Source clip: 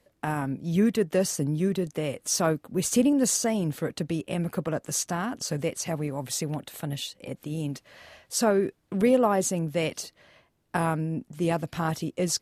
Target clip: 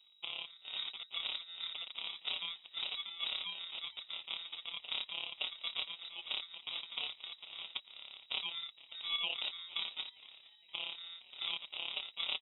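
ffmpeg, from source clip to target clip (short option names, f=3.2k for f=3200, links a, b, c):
-filter_complex "[0:a]aderivative,acrossover=split=870[a][b];[b]acompressor=threshold=-41dB:ratio=5[c];[a][c]amix=inputs=2:normalize=0,alimiter=level_in=9dB:limit=-24dB:level=0:latency=1:release=257,volume=-9dB,afftfilt=real='hypot(re,im)*cos(PI*b)':imag='0':win_size=1024:overlap=0.75,acrusher=samples=20:mix=1:aa=0.000001,aeval=exprs='val(0)+0.000141*(sin(2*PI*50*n/s)+sin(2*PI*2*50*n/s)/2+sin(2*PI*3*50*n/s)/3+sin(2*PI*4*50*n/s)/4+sin(2*PI*5*50*n/s)/5)':c=same,asplit=2[d][e];[e]asplit=4[f][g][h][i];[f]adelay=463,afreqshift=110,volume=-21dB[j];[g]adelay=926,afreqshift=220,volume=-27.2dB[k];[h]adelay=1389,afreqshift=330,volume=-33.4dB[l];[i]adelay=1852,afreqshift=440,volume=-39.6dB[m];[j][k][l][m]amix=inputs=4:normalize=0[n];[d][n]amix=inputs=2:normalize=0,lowpass=f=3.3k:t=q:w=0.5098,lowpass=f=3.3k:t=q:w=0.6013,lowpass=f=3.3k:t=q:w=0.9,lowpass=f=3.3k:t=q:w=2.563,afreqshift=-3900,volume=11.5dB"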